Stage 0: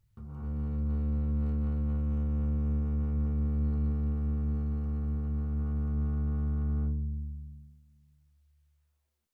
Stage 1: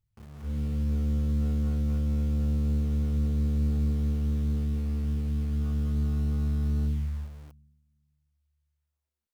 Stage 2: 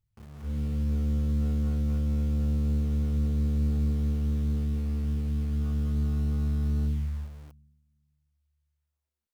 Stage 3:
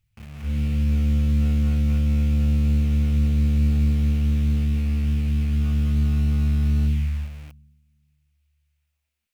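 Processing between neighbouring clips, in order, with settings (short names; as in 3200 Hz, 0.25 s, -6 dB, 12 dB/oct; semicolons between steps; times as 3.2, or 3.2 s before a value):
spectral noise reduction 7 dB; in parallel at -3 dB: bit-crush 8-bit; on the sum: gain -1.5 dB
nothing audible
fifteen-band EQ 400 Hz -8 dB, 1000 Hz -4 dB, 2500 Hz +10 dB; gain +7 dB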